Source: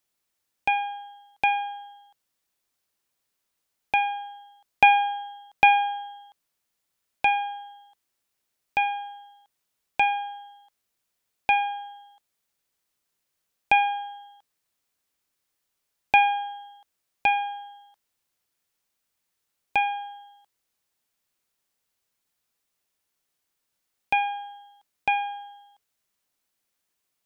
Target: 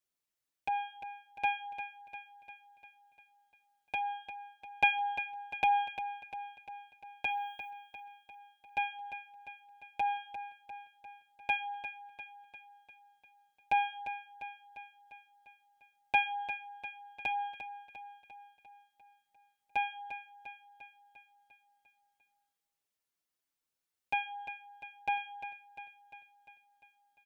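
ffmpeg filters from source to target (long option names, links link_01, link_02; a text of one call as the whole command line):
ffmpeg -i in.wav -filter_complex "[0:a]asettb=1/sr,asplit=3[link_01][link_02][link_03];[link_01]atrim=end=7.294[link_04];[link_02]atrim=start=7.29:end=7.7,asetpts=PTS-STARTPTS,afade=type=in:duration=0.004:curve=qsin,afade=type=out:start_time=0.406:duration=0.004:curve=qsin,aemphasis=mode=production:type=50fm[link_05];[link_03]atrim=start=7.696[link_06];[link_04][link_05]acrossfade=duration=0.004:curve1=hsin:curve2=qsin[link_07];[link_07][link_06]acrossfade=duration=0.004:curve1=qsin:curve2=hsin,aecho=1:1:349|698|1047|1396|1745|2094|2443:0.316|0.18|0.103|0.0586|0.0334|0.019|0.0108,asplit=2[link_08][link_09];[link_09]adelay=6,afreqshift=3[link_10];[link_08][link_10]amix=inputs=2:normalize=1,volume=-7.5dB" out.wav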